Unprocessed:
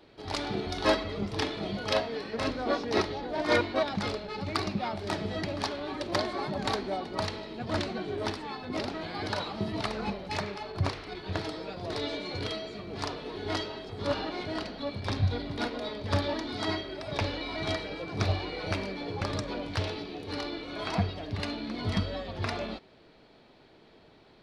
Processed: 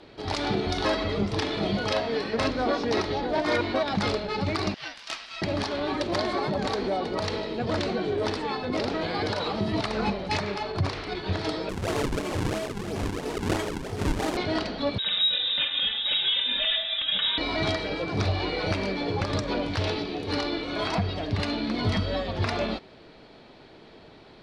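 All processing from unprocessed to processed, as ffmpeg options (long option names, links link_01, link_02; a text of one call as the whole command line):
ffmpeg -i in.wav -filter_complex "[0:a]asettb=1/sr,asplit=3[link_01][link_02][link_03];[link_01]atrim=end=4.744[link_04];[link_02]atrim=start=4.74:end=5.42,asetpts=PTS-STARTPTS,afade=type=in:duration=0.004:curve=qsin,afade=type=out:start_time=0.676:duration=0.004:curve=qsin,highpass=frequency=1400:width=0.5412,highpass=frequency=1400:width=1.3066,aeval=exprs='val(0)*sin(2*PI*610*n/s)':channel_layout=same[link_05];[link_03]atrim=start=5.416[link_06];[link_04][link_05]acrossfade=duration=0.004:curve1=hsin:curve2=qsin[link_07];[link_07][link_06]acrossfade=duration=0.004:curve1=qsin:curve2=hsin,asettb=1/sr,asplit=3[link_08][link_09][link_10];[link_08]atrim=end=6.384[link_11];[link_09]atrim=start=6.38:end=9.6,asetpts=PTS-STARTPTS,afade=type=in:duration=0.004:curve=qsin,afade=type=out:start_time=3.216:duration=0.004:curve=qsin,equalizer=frequency=480:width=4.9:gain=7.5,acompressor=threshold=-31dB:ratio=3:attack=3.2:release=140:knee=1:detection=peak[link_12];[link_10]atrim=start=9.596[link_13];[link_11][link_12]acrossfade=duration=0.004:curve1=hsin:curve2=qsin[link_14];[link_14][link_13]acrossfade=duration=0.004:curve1=qsin:curve2=hsin,asettb=1/sr,asplit=3[link_15][link_16][link_17];[link_15]atrim=end=11.694[link_18];[link_16]atrim=start=11.69:end=14.37,asetpts=PTS-STARTPTS,afade=type=in:duration=0.004:curve=qsin,afade=type=out:start_time=2.676:duration=0.004:curve=qsin,lowpass=3300,acrusher=samples=41:mix=1:aa=0.000001:lfo=1:lforange=65.6:lforate=3[link_19];[link_17]atrim=start=14.366[link_20];[link_18][link_19]acrossfade=duration=0.004:curve1=hsin:curve2=qsin[link_21];[link_21][link_20]acrossfade=duration=0.004:curve1=qsin:curve2=hsin,asettb=1/sr,asplit=3[link_22][link_23][link_24];[link_22]atrim=end=14.984[link_25];[link_23]atrim=start=14.98:end=17.38,asetpts=PTS-STARTPTS,afade=type=in:duration=0.004:curve=qsin,afade=type=out:start_time=2.396:duration=0.004:curve=qsin,aecho=1:1:3.3:0.69,atrim=end_sample=105840,lowpass=frequency=3300:width_type=q:width=0.5098,lowpass=frequency=3300:width_type=q:width=0.6013,lowpass=frequency=3300:width_type=q:width=0.9,lowpass=frequency=3300:width_type=q:width=2.563,afreqshift=-3900[link_26];[link_24]atrim=start=17.376[link_27];[link_25][link_26]acrossfade=duration=0.004:curve1=hsin:curve2=qsin[link_28];[link_28][link_27]acrossfade=duration=0.004:curve1=qsin:curve2=hsin,lowpass=9700,alimiter=limit=-23.5dB:level=0:latency=1:release=123,volume=7.5dB" out.wav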